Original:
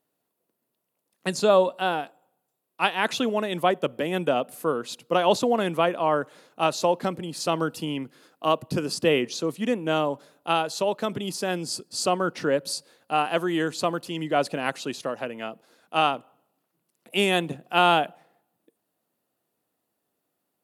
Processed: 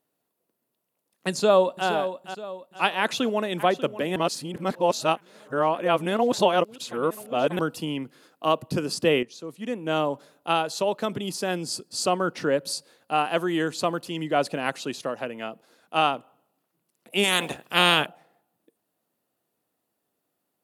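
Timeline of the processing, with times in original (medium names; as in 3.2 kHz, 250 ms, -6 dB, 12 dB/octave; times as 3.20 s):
1.30–1.87 s: echo throw 470 ms, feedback 40%, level -10 dB
3.00–3.65 s: echo throw 590 ms, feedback 65%, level -14.5 dB
4.16–7.59 s: reverse
9.23–10.00 s: fade in quadratic, from -12 dB
17.23–18.05 s: spectral peaks clipped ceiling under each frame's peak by 21 dB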